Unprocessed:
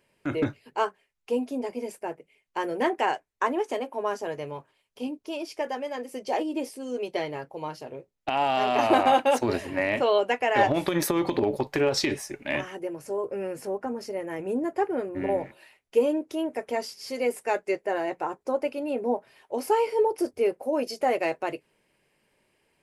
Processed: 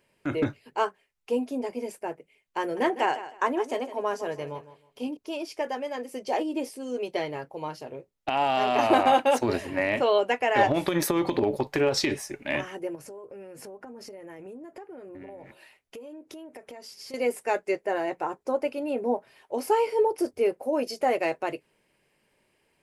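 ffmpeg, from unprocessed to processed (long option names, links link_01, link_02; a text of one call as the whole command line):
ffmpeg -i in.wav -filter_complex "[0:a]asettb=1/sr,asplit=3[link_01][link_02][link_03];[link_01]atrim=end=2.614[link_04];[link_02]atrim=start=2.61:end=5.17,asetpts=PTS-STARTPTS,afade=type=in:duration=0.004:curve=qsin,afade=type=out:start_time=2.556:duration=0.004:curve=qsin,aecho=1:1:157|314|471:0.2|0.0479|0.0115,atrim=end_sample=112896[link_05];[link_03]atrim=start=5.166[link_06];[link_04][link_05]acrossfade=duration=0.004:curve1=hsin:curve2=qsin[link_07];[link_07][link_06]acrossfade=duration=0.004:curve1=qsin:curve2=hsin,asettb=1/sr,asplit=3[link_08][link_09][link_10];[link_08]atrim=end=12.954[link_11];[link_09]atrim=start=12.95:end=17.14,asetpts=PTS-STARTPTS,afade=type=in:duration=0.004:curve=qsin,afade=type=out:start_time=4.186:duration=0.004:curve=qsin,acompressor=threshold=-39dB:ratio=16:attack=3.2:release=140:knee=1:detection=peak[link_12];[link_10]atrim=start=17.136[link_13];[link_11][link_12]acrossfade=duration=0.004:curve1=hsin:curve2=qsin[link_14];[link_14][link_13]acrossfade=duration=0.004:curve1=qsin:curve2=hsin" out.wav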